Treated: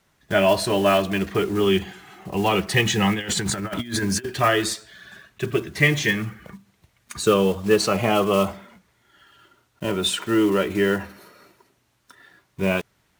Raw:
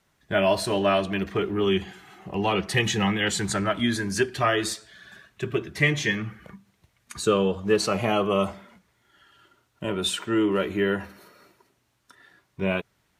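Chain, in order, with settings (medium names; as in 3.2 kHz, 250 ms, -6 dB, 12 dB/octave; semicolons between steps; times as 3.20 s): block-companded coder 5-bit; 3.14–4.32 s: compressor with a negative ratio -29 dBFS, ratio -0.5; trim +3.5 dB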